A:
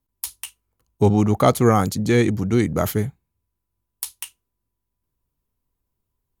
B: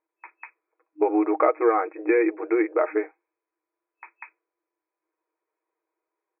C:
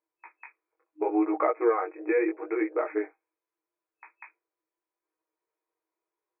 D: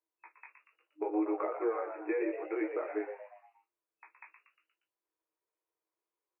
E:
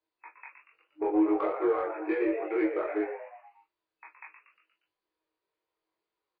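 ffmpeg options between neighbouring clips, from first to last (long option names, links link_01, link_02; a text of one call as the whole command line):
ffmpeg -i in.wav -af "afftfilt=real='re*between(b*sr/4096,310,2600)':imag='im*between(b*sr/4096,310,2600)':win_size=4096:overlap=0.75,aecho=1:1:6.4:0.54,acompressor=threshold=-24dB:ratio=2.5,volume=4dB" out.wav
ffmpeg -i in.wav -af "flanger=delay=15.5:depth=6.5:speed=0.76,volume=-2dB" out.wav
ffmpeg -i in.wav -filter_complex "[0:a]acrossover=split=400[link_01][link_02];[link_02]acompressor=threshold=-29dB:ratio=6[link_03];[link_01][link_03]amix=inputs=2:normalize=0,asplit=2[link_04][link_05];[link_05]asplit=5[link_06][link_07][link_08][link_09][link_10];[link_06]adelay=118,afreqshift=99,volume=-8.5dB[link_11];[link_07]adelay=236,afreqshift=198,volume=-15.1dB[link_12];[link_08]adelay=354,afreqshift=297,volume=-21.6dB[link_13];[link_09]adelay=472,afreqshift=396,volume=-28.2dB[link_14];[link_10]adelay=590,afreqshift=495,volume=-34.7dB[link_15];[link_11][link_12][link_13][link_14][link_15]amix=inputs=5:normalize=0[link_16];[link_04][link_16]amix=inputs=2:normalize=0,volume=-6dB" out.wav
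ffmpeg -i in.wav -filter_complex "[0:a]asplit=2[link_01][link_02];[link_02]asoftclip=type=tanh:threshold=-30.5dB,volume=-3dB[link_03];[link_01][link_03]amix=inputs=2:normalize=0,asplit=2[link_04][link_05];[link_05]adelay=22,volume=-2dB[link_06];[link_04][link_06]amix=inputs=2:normalize=0" -ar 11025 -c:a libmp3lame -b:a 24k out.mp3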